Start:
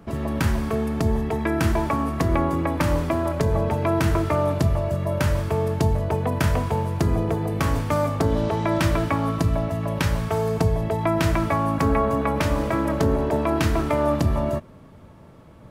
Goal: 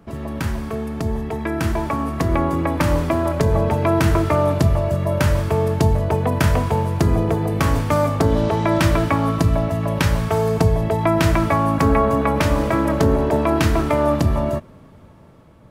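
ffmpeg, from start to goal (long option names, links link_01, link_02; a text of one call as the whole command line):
ffmpeg -i in.wav -af "dynaudnorm=framelen=900:gausssize=5:maxgain=8dB,volume=-2dB" out.wav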